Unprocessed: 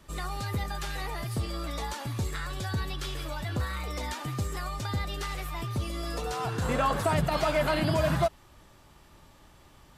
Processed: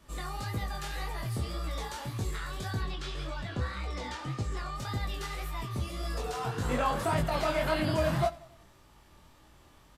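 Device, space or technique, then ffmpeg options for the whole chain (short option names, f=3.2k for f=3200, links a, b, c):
double-tracked vocal: -filter_complex "[0:a]asettb=1/sr,asplit=3[a][b][c];[a]atrim=end=2.814[d];[b]atrim=start=2.81:end=4.76,asetpts=PTS-STARTPTS,afade=t=in:d=0.004:c=qsin,afade=t=out:st=1.946:d=0.004:c=qsin,lowpass=6.4k[e];[c]atrim=start=4.756[f];[d][e]acrossfade=d=0.004:c1=hsin:c2=qsin[g];[g][f]acrossfade=d=0.004:c1=qsin:c2=hsin,asplit=2[h][i];[i]adelay=16,volume=-11.5dB[j];[h][j]amix=inputs=2:normalize=0,aecho=1:1:91|182|273|364:0.1|0.049|0.024|0.0118,flanger=delay=18.5:depth=7.6:speed=1.8"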